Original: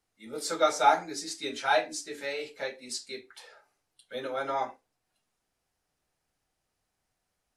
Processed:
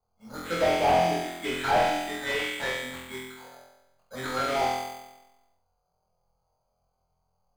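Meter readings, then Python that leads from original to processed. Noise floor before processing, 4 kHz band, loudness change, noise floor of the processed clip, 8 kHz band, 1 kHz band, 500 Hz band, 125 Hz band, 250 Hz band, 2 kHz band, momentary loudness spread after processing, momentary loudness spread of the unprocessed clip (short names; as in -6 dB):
-82 dBFS, +3.0 dB, +3.0 dB, -77 dBFS, -3.0 dB, +2.5 dB, +3.5 dB, +15.0 dB, +6.5 dB, +4.5 dB, 19 LU, 15 LU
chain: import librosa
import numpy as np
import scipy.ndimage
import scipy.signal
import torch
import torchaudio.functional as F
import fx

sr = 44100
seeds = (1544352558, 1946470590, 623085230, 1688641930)

y = fx.block_float(x, sr, bits=3)
y = fx.high_shelf(y, sr, hz=2300.0, db=7.0)
y = fx.env_lowpass(y, sr, base_hz=1200.0, full_db=-23.0)
y = fx.env_phaser(y, sr, low_hz=310.0, high_hz=1400.0, full_db=-23.5)
y = np.clip(y, -10.0 ** (-23.0 / 20.0), 10.0 ** (-23.0 / 20.0))
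y = fx.room_flutter(y, sr, wall_m=4.0, rt60_s=1.0)
y = np.repeat(scipy.signal.resample_poly(y, 1, 8), 8)[:len(y)]
y = fx.slew_limit(y, sr, full_power_hz=65.0)
y = F.gain(torch.from_numpy(y), 5.0).numpy()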